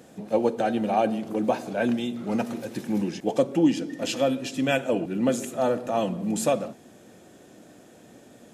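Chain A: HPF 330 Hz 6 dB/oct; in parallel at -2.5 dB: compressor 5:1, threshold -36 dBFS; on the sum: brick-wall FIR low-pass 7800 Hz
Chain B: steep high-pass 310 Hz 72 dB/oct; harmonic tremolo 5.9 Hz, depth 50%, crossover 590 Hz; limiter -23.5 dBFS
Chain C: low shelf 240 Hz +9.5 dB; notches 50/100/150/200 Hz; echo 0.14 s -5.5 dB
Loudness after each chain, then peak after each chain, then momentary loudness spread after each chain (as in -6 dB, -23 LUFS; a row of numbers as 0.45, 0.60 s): -27.0, -34.5, -22.0 LUFS; -9.5, -23.5, -6.0 dBFS; 6, 5, 6 LU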